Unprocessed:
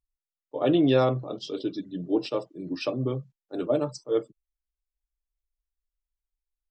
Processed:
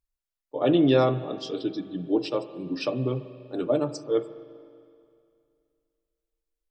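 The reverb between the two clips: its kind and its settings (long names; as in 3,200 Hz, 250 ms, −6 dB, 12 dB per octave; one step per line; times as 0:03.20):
spring reverb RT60 2.4 s, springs 41/48 ms, chirp 50 ms, DRR 13 dB
level +1 dB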